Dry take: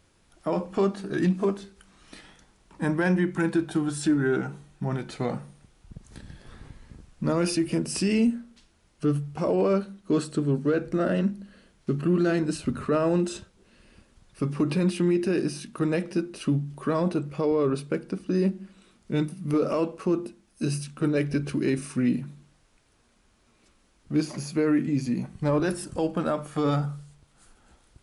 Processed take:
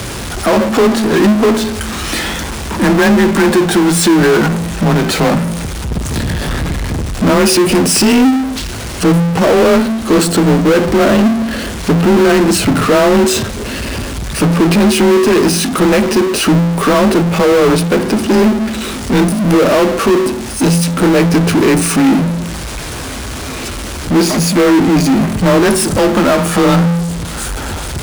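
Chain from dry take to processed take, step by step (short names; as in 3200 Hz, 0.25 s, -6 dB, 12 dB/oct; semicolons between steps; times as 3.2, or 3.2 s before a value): frequency shift +26 Hz; power-law curve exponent 0.35; gain +8.5 dB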